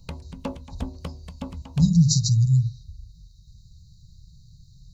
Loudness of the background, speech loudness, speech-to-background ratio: −38.0 LKFS, −20.5 LKFS, 17.5 dB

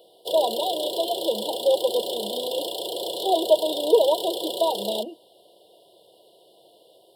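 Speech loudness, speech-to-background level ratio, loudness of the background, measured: −25.0 LKFS, 4.5 dB, −29.5 LKFS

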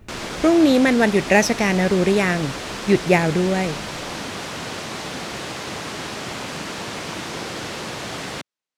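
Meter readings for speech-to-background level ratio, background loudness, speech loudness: 11.0 dB, −29.5 LKFS, −18.5 LKFS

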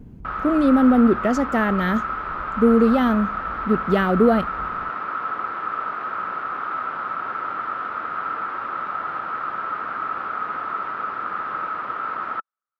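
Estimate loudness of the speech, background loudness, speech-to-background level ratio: −19.5 LKFS, −27.0 LKFS, 7.5 dB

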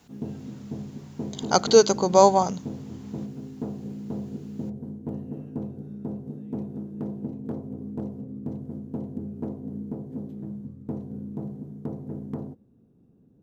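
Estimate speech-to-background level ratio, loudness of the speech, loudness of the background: 16.0 dB, −19.5 LKFS, −35.5 LKFS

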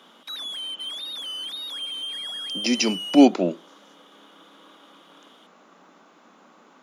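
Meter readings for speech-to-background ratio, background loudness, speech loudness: 10.5 dB, −30.5 LKFS, −20.0 LKFS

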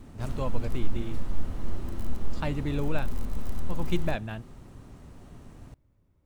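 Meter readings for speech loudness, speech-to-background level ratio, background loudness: −35.0 LKFS, 4.0 dB, −39.0 LKFS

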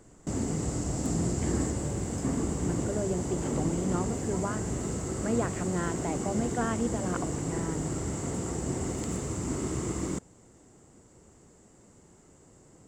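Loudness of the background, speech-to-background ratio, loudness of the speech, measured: −32.5 LKFS, −2.5 dB, −35.0 LKFS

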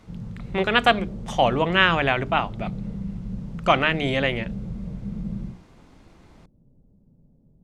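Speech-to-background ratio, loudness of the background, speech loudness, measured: 12.5 dB, −34.5 LKFS, −22.0 LKFS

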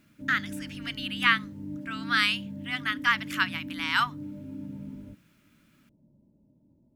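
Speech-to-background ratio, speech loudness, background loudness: 12.0 dB, −27.5 LKFS, −39.5 LKFS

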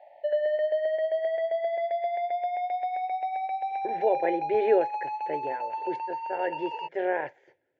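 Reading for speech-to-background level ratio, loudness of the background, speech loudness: 0.5 dB, −30.5 LKFS, −30.0 LKFS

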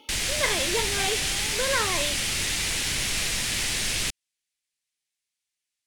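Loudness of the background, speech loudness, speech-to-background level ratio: −25.0 LKFS, −29.5 LKFS, −4.5 dB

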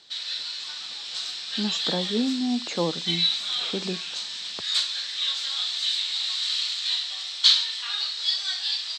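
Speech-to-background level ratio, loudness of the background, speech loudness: −5.0 dB, −25.0 LKFS, −30.0 LKFS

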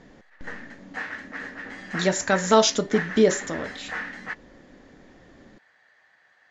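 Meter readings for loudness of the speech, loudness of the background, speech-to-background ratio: −22.5 LKFS, −35.0 LKFS, 12.5 dB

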